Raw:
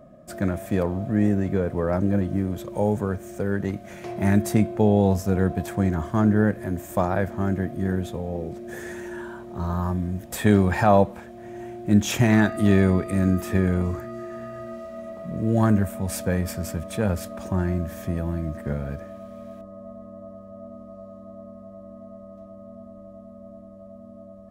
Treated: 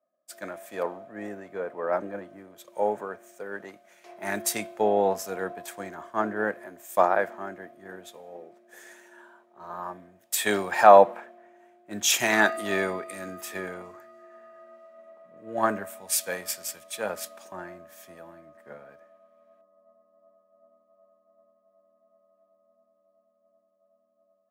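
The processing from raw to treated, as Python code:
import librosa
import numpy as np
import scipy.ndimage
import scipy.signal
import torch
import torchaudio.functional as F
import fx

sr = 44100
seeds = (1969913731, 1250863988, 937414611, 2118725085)

y = scipy.signal.sosfilt(scipy.signal.butter(2, 600.0, 'highpass', fs=sr, output='sos'), x)
y = fx.band_widen(y, sr, depth_pct=100)
y = y * 10.0 ** (-1.5 / 20.0)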